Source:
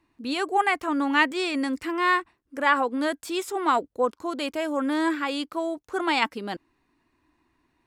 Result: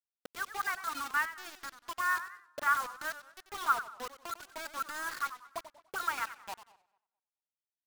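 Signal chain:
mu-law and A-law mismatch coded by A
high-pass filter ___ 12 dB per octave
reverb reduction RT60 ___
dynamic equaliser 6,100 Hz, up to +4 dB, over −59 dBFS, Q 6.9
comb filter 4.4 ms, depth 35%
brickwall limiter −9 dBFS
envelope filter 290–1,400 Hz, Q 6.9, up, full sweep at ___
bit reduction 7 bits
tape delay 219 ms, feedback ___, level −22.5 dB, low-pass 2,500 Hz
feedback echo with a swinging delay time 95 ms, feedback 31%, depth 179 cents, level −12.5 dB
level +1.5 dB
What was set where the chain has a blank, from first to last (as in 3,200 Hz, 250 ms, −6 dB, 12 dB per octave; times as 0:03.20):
130 Hz, 0.56 s, −26.5 dBFS, 21%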